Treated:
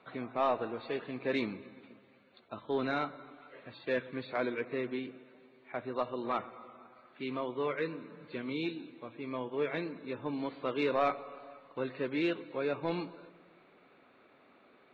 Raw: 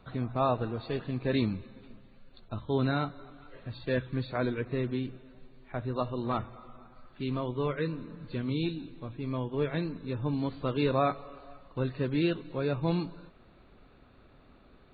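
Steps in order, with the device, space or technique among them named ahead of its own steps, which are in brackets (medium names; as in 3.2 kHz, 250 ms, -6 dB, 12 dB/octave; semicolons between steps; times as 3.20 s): intercom (band-pass 320–3600 Hz; peaking EQ 2.2 kHz +6.5 dB 0.28 oct; saturation -20 dBFS, distortion -20 dB); filtered feedback delay 123 ms, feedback 66%, low-pass 1.1 kHz, level -18.5 dB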